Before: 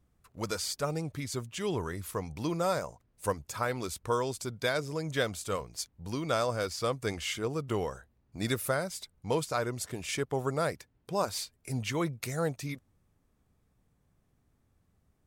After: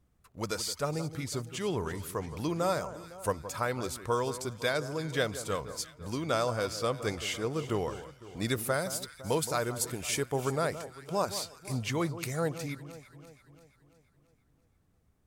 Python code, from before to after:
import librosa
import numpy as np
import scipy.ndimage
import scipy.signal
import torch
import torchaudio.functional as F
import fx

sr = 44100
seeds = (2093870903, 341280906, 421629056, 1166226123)

y = fx.high_shelf(x, sr, hz=7500.0, db=10.5, at=(8.74, 10.56))
y = fx.echo_alternate(y, sr, ms=169, hz=1400.0, feedback_pct=71, wet_db=-12)